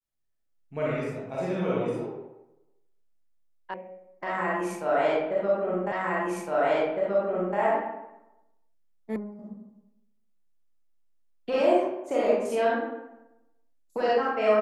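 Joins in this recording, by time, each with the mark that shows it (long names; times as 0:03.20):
0:03.74: cut off before it has died away
0:05.92: the same again, the last 1.66 s
0:09.16: cut off before it has died away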